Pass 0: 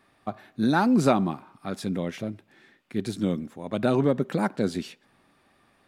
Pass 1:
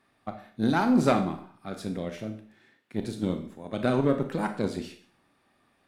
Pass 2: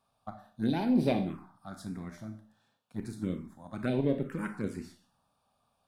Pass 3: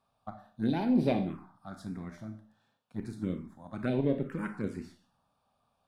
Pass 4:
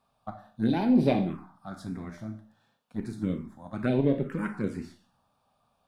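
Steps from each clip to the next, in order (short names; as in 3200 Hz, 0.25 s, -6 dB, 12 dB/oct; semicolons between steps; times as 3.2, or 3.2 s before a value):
added harmonics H 3 -24 dB, 4 -22 dB, 7 -30 dB, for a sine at -7.5 dBFS; Schroeder reverb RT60 0.48 s, combs from 25 ms, DRR 6 dB; gain -1 dB
envelope phaser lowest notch 330 Hz, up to 1300 Hz, full sweep at -19.5 dBFS; gain -3.5 dB
high shelf 5700 Hz -8.5 dB
flange 0.68 Hz, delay 3.8 ms, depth 6.2 ms, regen -66%; gain +8 dB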